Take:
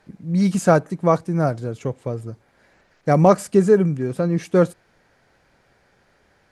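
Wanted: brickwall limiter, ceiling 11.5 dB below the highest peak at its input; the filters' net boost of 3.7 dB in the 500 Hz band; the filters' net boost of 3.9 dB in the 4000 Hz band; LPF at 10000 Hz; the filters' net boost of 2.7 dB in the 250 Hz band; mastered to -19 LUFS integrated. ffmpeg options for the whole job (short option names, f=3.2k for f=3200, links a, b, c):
-af "lowpass=10k,equalizer=f=250:t=o:g=3.5,equalizer=f=500:t=o:g=3.5,equalizer=f=4k:t=o:g=5,volume=3dB,alimiter=limit=-7.5dB:level=0:latency=1"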